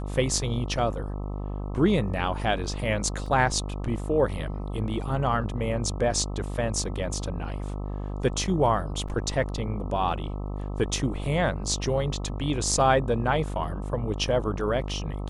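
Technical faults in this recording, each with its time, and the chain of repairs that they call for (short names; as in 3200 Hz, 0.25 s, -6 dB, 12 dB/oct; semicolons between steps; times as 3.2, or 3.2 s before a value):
buzz 50 Hz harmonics 26 -32 dBFS
3.26 gap 3.7 ms
9.08–9.09 gap 5.3 ms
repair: de-hum 50 Hz, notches 26; interpolate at 3.26, 3.7 ms; interpolate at 9.08, 5.3 ms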